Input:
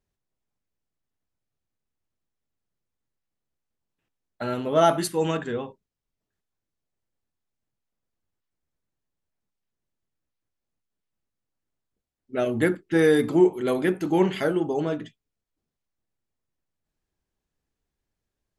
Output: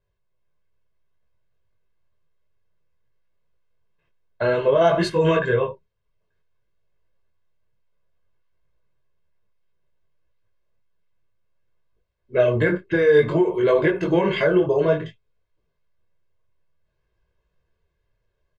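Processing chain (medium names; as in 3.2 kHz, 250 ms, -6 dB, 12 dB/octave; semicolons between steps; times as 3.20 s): low-pass 3 kHz 12 dB/octave; comb 1.9 ms, depth 87%; peak limiter -16.5 dBFS, peak gain reduction 10.5 dB; level rider gain up to 4.5 dB; detune thickener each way 20 cents; trim +6.5 dB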